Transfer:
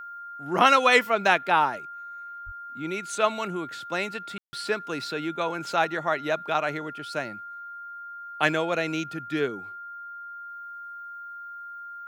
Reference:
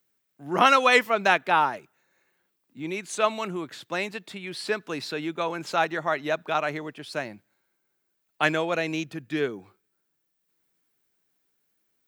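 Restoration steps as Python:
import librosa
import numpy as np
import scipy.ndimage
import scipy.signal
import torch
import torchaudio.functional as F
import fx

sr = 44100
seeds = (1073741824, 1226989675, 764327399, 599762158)

y = fx.notch(x, sr, hz=1400.0, q=30.0)
y = fx.highpass(y, sr, hz=140.0, slope=24, at=(2.45, 2.57), fade=0.02)
y = fx.fix_ambience(y, sr, seeds[0], print_start_s=1.88, print_end_s=2.38, start_s=4.38, end_s=4.53)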